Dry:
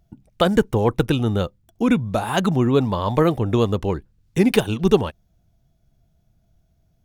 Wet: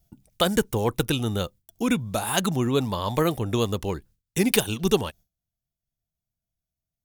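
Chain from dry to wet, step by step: pre-emphasis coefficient 0.8; gate with hold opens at -60 dBFS; gain +8 dB

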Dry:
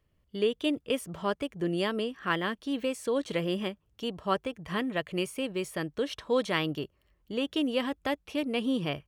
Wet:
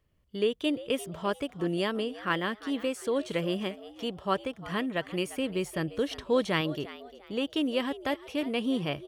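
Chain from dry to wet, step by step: 5.29–6.61 low shelf 180 Hz +8 dB; frequency-shifting echo 0.349 s, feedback 31%, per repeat +100 Hz, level -16.5 dB

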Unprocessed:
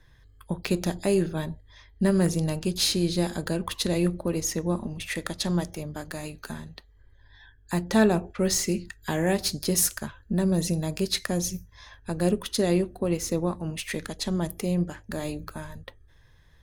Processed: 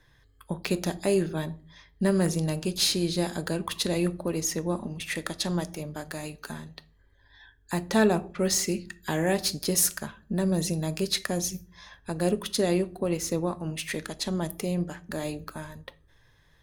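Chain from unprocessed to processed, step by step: low shelf 120 Hz -8 dB; reverb RT60 0.50 s, pre-delay 7 ms, DRR 16 dB

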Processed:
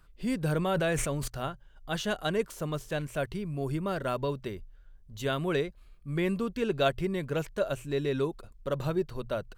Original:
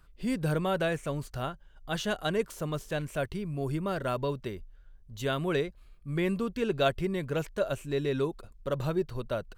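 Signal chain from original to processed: notches 60/120 Hz; 0.57–1.28 sustainer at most 22 dB/s

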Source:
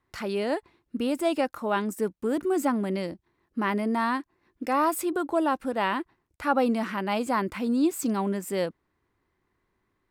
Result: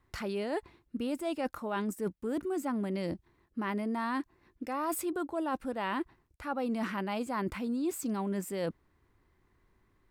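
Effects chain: low shelf 100 Hz +10.5 dB; reverse; compressor 6:1, threshold -33 dBFS, peak gain reduction 14.5 dB; reverse; gain +2 dB

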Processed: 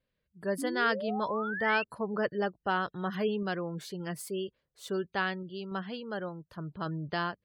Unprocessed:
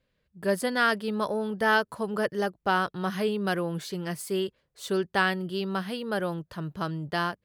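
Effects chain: spectral gate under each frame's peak -30 dB strong; random-step tremolo; painted sound rise, 0.58–1.84, 260–2800 Hz -34 dBFS; gain -2.5 dB

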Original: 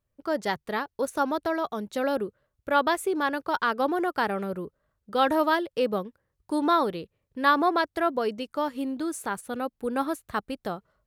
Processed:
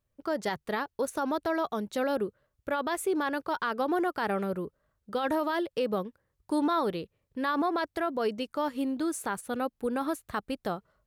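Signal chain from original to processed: limiter -20.5 dBFS, peak gain reduction 11.5 dB

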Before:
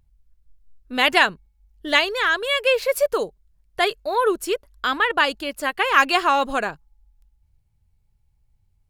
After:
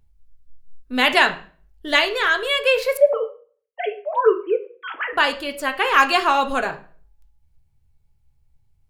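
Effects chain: 2.97–5.13 sine-wave speech; on a send: reverb RT60 0.40 s, pre-delay 4 ms, DRR 6 dB

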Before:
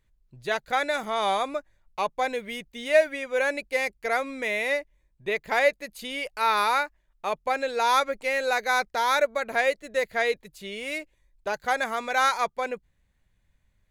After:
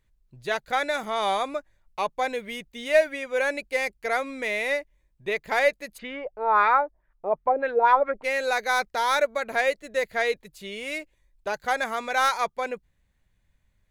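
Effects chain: tracing distortion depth 0.022 ms; 5.97–8.23 LFO low-pass sine 1.2 Hz -> 6.3 Hz 490–1900 Hz

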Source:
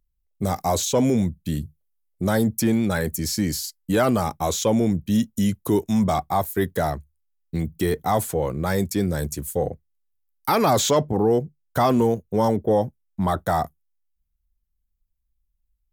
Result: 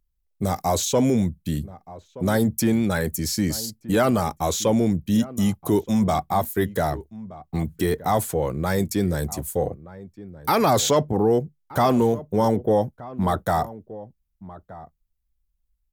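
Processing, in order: outdoor echo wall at 210 m, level -17 dB

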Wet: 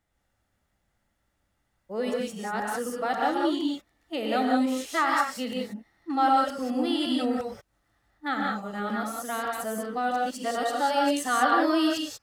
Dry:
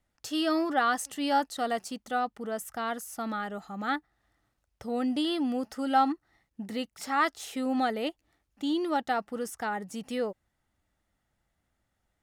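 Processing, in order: whole clip reversed; non-linear reverb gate 0.21 s rising, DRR -1.5 dB

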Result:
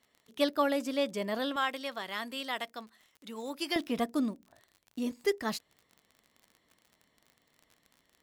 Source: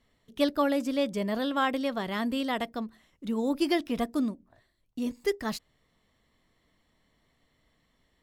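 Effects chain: HPF 410 Hz 6 dB/oct, from 1.56 s 1300 Hz, from 3.76 s 210 Hz; crackle 52/s -44 dBFS

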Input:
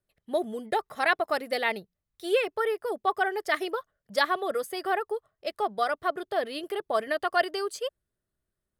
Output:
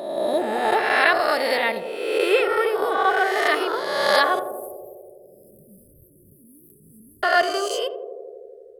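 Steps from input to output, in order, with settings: spectral swells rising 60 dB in 1.39 s; 4.39–7.23 inverse Chebyshev band-stop 670–3800 Hz, stop band 70 dB; narrowing echo 82 ms, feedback 85%, band-pass 450 Hz, level -8.5 dB; gain +2.5 dB

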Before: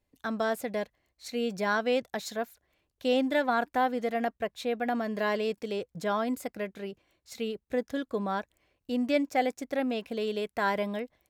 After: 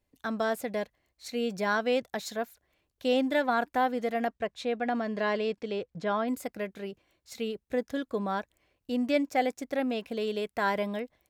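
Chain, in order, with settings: 4.27–6.27 LPF 9100 Hz -> 3600 Hz 12 dB/oct

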